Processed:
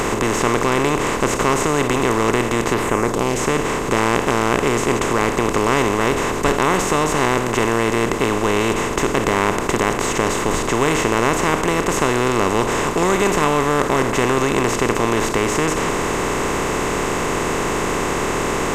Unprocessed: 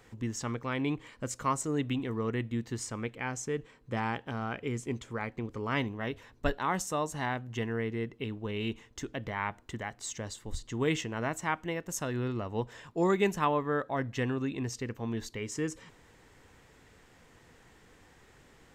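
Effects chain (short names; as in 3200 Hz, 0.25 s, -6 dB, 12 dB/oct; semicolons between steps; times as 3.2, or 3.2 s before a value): per-bin compression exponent 0.2; 2.73–3.38 bell 8500 Hz -> 1100 Hz -12 dB 0.75 oct; gain +4.5 dB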